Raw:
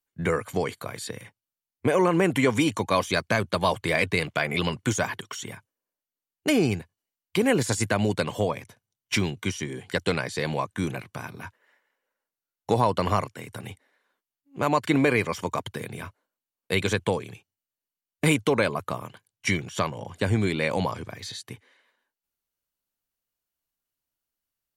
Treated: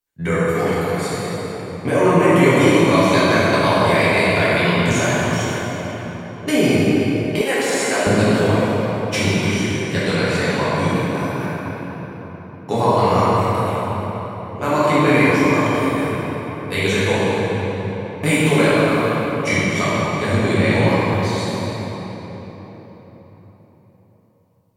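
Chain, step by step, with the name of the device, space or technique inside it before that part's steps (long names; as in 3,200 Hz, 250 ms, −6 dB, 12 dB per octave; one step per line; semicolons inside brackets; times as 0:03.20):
cathedral (convolution reverb RT60 4.5 s, pre-delay 5 ms, DRR −10.5 dB)
0:07.41–0:08.07: high-pass filter 430 Hz 12 dB per octave
level −1.5 dB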